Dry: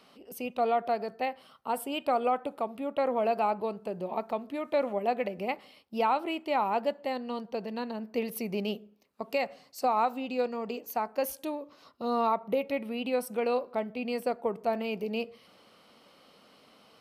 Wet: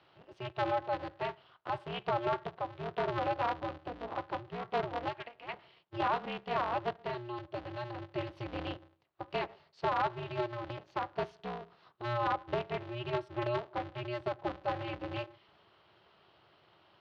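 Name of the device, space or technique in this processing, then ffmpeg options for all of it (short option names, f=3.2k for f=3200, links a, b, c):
ring modulator pedal into a guitar cabinet: -filter_complex "[0:a]asplit=3[a][b][c];[a]afade=t=out:st=5.08:d=0.02[d];[b]highpass=930,afade=t=in:st=5.08:d=0.02,afade=t=out:st=5.52:d=0.02[e];[c]afade=t=in:st=5.52:d=0.02[f];[d][e][f]amix=inputs=3:normalize=0,aeval=exprs='val(0)*sgn(sin(2*PI*120*n/s))':c=same,highpass=87,equalizer=f=260:t=q:w=4:g=-9,equalizer=f=490:t=q:w=4:g=-4,equalizer=f=2.3k:t=q:w=4:g=-4,lowpass=f=3.7k:w=0.5412,lowpass=f=3.7k:w=1.3066,volume=-4dB"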